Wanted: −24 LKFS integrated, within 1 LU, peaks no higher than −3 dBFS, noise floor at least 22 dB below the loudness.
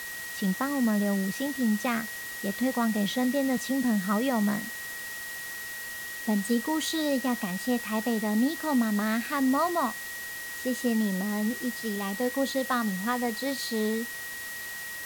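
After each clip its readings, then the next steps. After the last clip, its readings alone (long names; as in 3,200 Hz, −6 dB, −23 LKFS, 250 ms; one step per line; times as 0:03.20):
interfering tone 1,900 Hz; level of the tone −37 dBFS; background noise floor −38 dBFS; target noise floor −51 dBFS; integrated loudness −28.5 LKFS; sample peak −15.0 dBFS; target loudness −24.0 LKFS
→ notch filter 1,900 Hz, Q 30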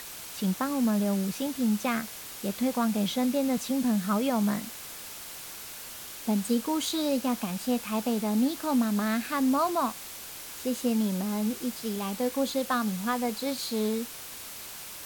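interfering tone none found; background noise floor −42 dBFS; target noise floor −52 dBFS
→ broadband denoise 10 dB, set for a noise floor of −42 dBFS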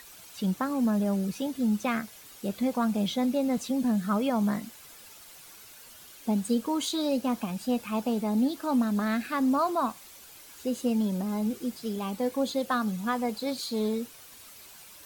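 background noise floor −50 dBFS; target noise floor −51 dBFS
→ broadband denoise 6 dB, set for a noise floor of −50 dBFS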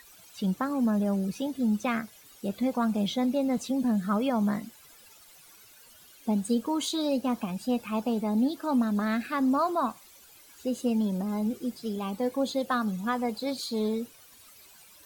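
background noise floor −54 dBFS; integrated loudness −29.0 LKFS; sample peak −16.0 dBFS; target loudness −24.0 LKFS
→ level +5 dB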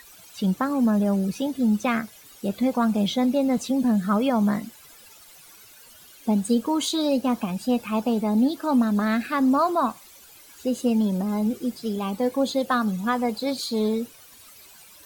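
integrated loudness −24.0 LKFS; sample peak −11.0 dBFS; background noise floor −49 dBFS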